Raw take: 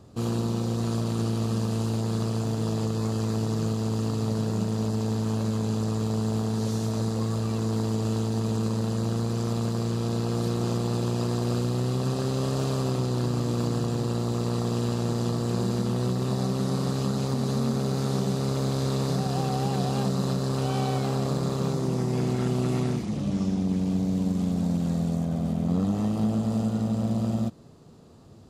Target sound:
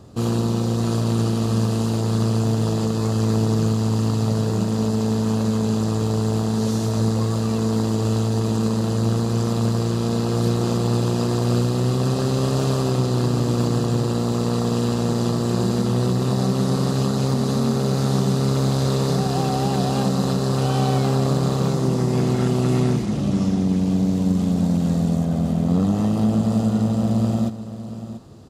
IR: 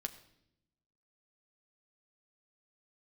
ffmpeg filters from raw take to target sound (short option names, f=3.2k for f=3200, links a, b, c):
-filter_complex "[0:a]bandreject=f=2.3k:w=25,asplit=2[a][b];[b]aecho=0:1:687:0.237[c];[a][c]amix=inputs=2:normalize=0,volume=6dB"